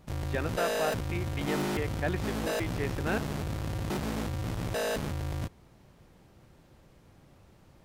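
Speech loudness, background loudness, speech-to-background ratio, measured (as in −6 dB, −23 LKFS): −36.0 LKFS, −33.5 LKFS, −2.5 dB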